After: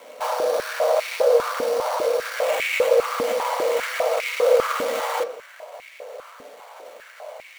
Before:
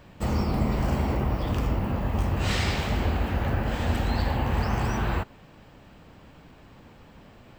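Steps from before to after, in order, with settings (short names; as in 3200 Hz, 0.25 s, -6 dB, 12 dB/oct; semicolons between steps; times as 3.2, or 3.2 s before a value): bell 1800 Hz +9 dB 0.28 oct; limiter -23.5 dBFS, peak gain reduction 10 dB; frequency shift +420 Hz; sample-rate reducer 5100 Hz, jitter 20%; on a send at -6 dB: reverb RT60 0.75 s, pre-delay 3 ms; on the sum: stepped high-pass 5 Hz 260–2200 Hz; gain +3 dB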